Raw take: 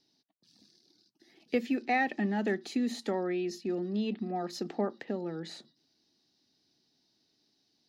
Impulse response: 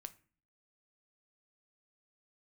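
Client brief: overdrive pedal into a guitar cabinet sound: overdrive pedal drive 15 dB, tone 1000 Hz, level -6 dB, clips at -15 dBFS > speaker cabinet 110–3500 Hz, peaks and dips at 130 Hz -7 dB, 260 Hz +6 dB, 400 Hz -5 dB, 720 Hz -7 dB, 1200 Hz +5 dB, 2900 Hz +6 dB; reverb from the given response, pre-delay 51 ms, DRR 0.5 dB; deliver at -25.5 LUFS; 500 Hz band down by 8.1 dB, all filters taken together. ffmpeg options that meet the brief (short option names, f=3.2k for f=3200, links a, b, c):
-filter_complex "[0:a]equalizer=f=500:t=o:g=-7.5,asplit=2[a][b];[1:a]atrim=start_sample=2205,adelay=51[c];[b][c]afir=irnorm=-1:irlink=0,volume=5dB[d];[a][d]amix=inputs=2:normalize=0,asplit=2[e][f];[f]highpass=f=720:p=1,volume=15dB,asoftclip=type=tanh:threshold=-15dB[g];[e][g]amix=inputs=2:normalize=0,lowpass=f=1k:p=1,volume=-6dB,highpass=110,equalizer=f=130:t=q:w=4:g=-7,equalizer=f=260:t=q:w=4:g=6,equalizer=f=400:t=q:w=4:g=-5,equalizer=f=720:t=q:w=4:g=-7,equalizer=f=1.2k:t=q:w=4:g=5,equalizer=f=2.9k:t=q:w=4:g=6,lowpass=f=3.5k:w=0.5412,lowpass=f=3.5k:w=1.3066,volume=6dB"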